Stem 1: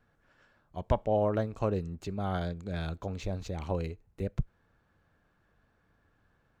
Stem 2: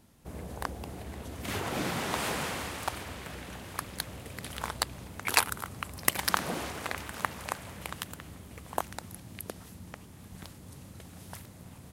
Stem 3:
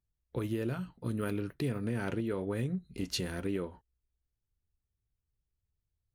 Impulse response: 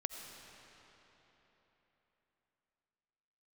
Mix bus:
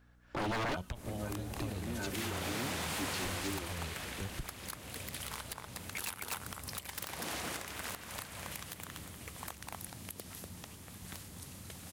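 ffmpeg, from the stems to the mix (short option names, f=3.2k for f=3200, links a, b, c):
-filter_complex "[0:a]acrossover=split=160|3000[a][b][c];[b]acompressor=threshold=-42dB:ratio=6[d];[a][d][c]amix=inputs=3:normalize=0,aeval=exprs='val(0)+0.000891*(sin(2*PI*60*n/s)+sin(2*PI*2*60*n/s)/2+sin(2*PI*3*60*n/s)/3+sin(2*PI*4*60*n/s)/4+sin(2*PI*5*60*n/s)/5)':c=same,volume=2dB,asplit=2[e][f];[1:a]adelay=700,volume=1dB,asplit=2[g][h];[h]volume=-13dB[i];[2:a]lowpass=6.1k,aecho=1:1:3.3:0.84,dynaudnorm=f=160:g=3:m=10.5dB,volume=-2dB[j];[f]apad=whole_len=270994[k];[j][k]sidechaincompress=threshold=-57dB:ratio=4:attack=8.5:release=190[l];[e][g]amix=inputs=2:normalize=0,tiltshelf=f=1.4k:g=-4.5,acompressor=threshold=-36dB:ratio=4,volume=0dB[m];[i]aecho=0:1:242:1[n];[l][m][n]amix=inputs=3:normalize=0,aeval=exprs='0.0335*(abs(mod(val(0)/0.0335+3,4)-2)-1)':c=same"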